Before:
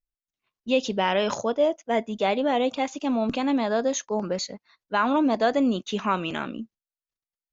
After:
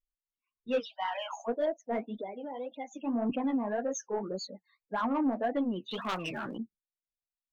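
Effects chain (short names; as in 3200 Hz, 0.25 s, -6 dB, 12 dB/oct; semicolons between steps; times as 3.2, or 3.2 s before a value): 0.81–1.48 steep high-pass 690 Hz 48 dB/oct; 2.15–2.91 compressor 6:1, threshold -30 dBFS, peak gain reduction 11 dB; loudest bins only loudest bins 16; overloaded stage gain 14 dB; phaser 0.3 Hz, delay 4.6 ms, feedback 30%; soft clip -16 dBFS, distortion -19 dB; flange 1.8 Hz, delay 2.4 ms, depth 9.9 ms, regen -44%; 5.91–6.58 spectral compressor 2:1; gain -2.5 dB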